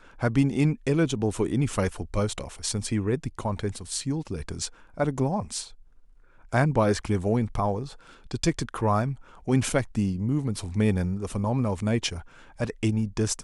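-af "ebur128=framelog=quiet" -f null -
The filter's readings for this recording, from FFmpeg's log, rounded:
Integrated loudness:
  I:         -27.2 LUFS
  Threshold: -37.6 LUFS
Loudness range:
  LRA:         3.4 LU
  Threshold: -47.9 LUFS
  LRA low:   -30.1 LUFS
  LRA high:  -26.6 LUFS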